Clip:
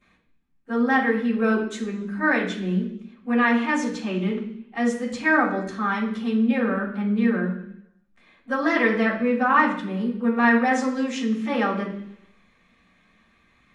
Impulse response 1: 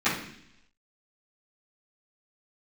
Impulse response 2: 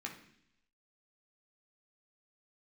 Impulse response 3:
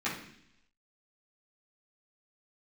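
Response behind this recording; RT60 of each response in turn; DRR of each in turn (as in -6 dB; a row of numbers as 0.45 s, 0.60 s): 1; 0.70 s, 0.70 s, 0.70 s; -17.5 dB, -1.0 dB, -11.0 dB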